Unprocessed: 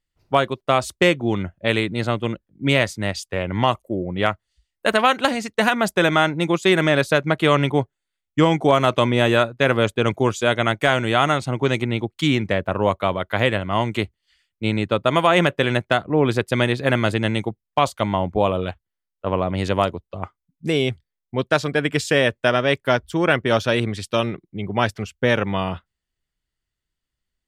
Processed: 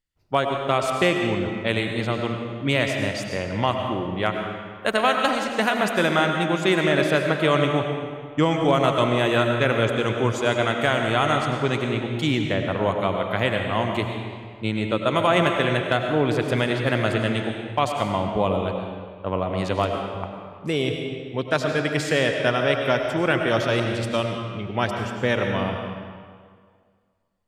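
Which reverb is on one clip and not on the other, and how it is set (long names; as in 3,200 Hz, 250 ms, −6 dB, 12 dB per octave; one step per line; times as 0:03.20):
comb and all-pass reverb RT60 1.9 s, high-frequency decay 0.8×, pre-delay 60 ms, DRR 3 dB
level −4 dB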